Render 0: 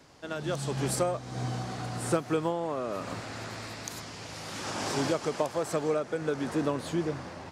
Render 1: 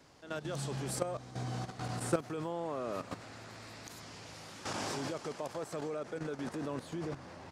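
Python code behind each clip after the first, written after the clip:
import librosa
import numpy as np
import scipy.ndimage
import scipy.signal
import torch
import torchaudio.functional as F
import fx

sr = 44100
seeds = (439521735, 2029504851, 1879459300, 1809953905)

y = fx.level_steps(x, sr, step_db=12)
y = F.gain(torch.from_numpy(y), -1.5).numpy()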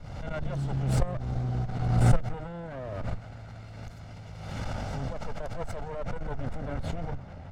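y = fx.lower_of_two(x, sr, delay_ms=1.4)
y = fx.riaa(y, sr, side='playback')
y = fx.pre_swell(y, sr, db_per_s=39.0)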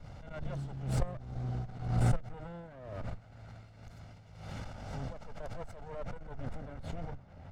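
y = x * (1.0 - 0.57 / 2.0 + 0.57 / 2.0 * np.cos(2.0 * np.pi * 2.0 * (np.arange(len(x)) / sr)))
y = F.gain(torch.from_numpy(y), -5.5).numpy()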